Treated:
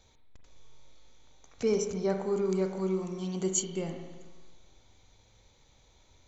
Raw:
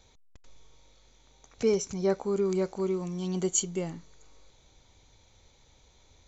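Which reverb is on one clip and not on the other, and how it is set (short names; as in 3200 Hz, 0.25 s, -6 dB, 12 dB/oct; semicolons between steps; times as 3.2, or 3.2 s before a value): spring tank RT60 1.3 s, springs 37/47 ms, chirp 40 ms, DRR 4.5 dB; gain -2.5 dB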